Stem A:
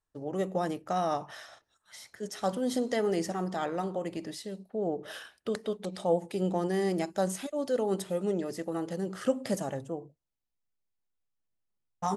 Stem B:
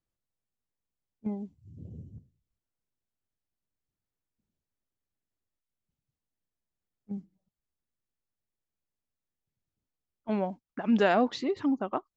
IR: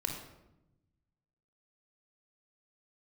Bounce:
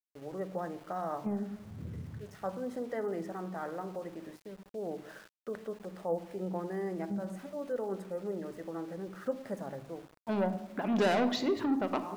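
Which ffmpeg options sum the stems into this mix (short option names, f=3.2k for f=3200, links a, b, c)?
-filter_complex "[0:a]highshelf=f=2.3k:t=q:w=1.5:g=-13,volume=-9.5dB,asplit=2[a][b];[b]volume=-10dB[c];[1:a]asoftclip=type=tanh:threshold=-27dB,volume=-0.5dB,asplit=3[d][e][f];[e]volume=-5.5dB[g];[f]apad=whole_len=536319[h];[a][h]sidechaincompress=threshold=-51dB:ratio=8:attack=16:release=168[i];[2:a]atrim=start_sample=2205[j];[c][g]amix=inputs=2:normalize=0[k];[k][j]afir=irnorm=-1:irlink=0[l];[i][d][l]amix=inputs=3:normalize=0,lowshelf=f=64:g=-8.5,aeval=exprs='val(0)*gte(abs(val(0)),0.00266)':c=same"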